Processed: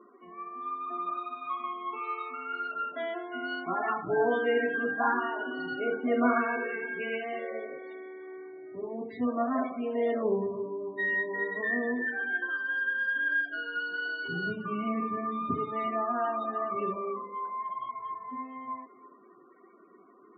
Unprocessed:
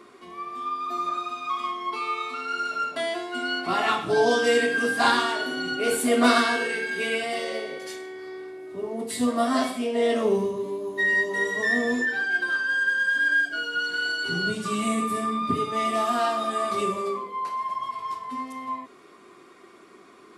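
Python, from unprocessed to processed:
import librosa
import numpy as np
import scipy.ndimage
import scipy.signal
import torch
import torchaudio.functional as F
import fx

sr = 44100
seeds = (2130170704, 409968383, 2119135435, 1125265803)

p1 = scipy.signal.sosfilt(scipy.signal.butter(2, 2300.0, 'lowpass', fs=sr, output='sos'), x)
p2 = p1 + fx.echo_single(p1, sr, ms=333, db=-18.0, dry=0)
p3 = fx.spec_topn(p2, sr, count=32)
y = p3 * librosa.db_to_amplitude(-5.5)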